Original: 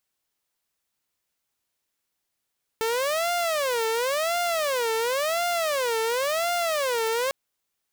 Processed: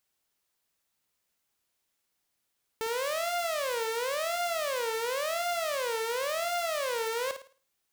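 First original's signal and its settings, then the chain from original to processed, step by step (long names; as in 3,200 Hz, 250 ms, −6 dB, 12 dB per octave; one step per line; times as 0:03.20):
siren wail 446–701 Hz 0.94 per second saw −20.5 dBFS 4.50 s
brickwall limiter −27 dBFS
flutter between parallel walls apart 9.3 metres, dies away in 0.38 s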